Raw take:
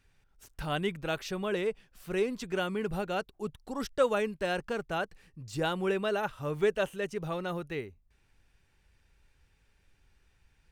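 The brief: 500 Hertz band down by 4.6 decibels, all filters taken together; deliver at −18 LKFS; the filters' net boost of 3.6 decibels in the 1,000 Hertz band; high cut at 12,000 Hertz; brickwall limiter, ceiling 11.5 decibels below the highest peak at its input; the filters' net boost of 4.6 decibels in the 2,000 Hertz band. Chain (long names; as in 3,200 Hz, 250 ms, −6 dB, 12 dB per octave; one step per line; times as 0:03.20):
low-pass filter 12,000 Hz
parametric band 500 Hz −7.5 dB
parametric band 1,000 Hz +6 dB
parametric band 2,000 Hz +4.5 dB
level +19.5 dB
brickwall limiter −7.5 dBFS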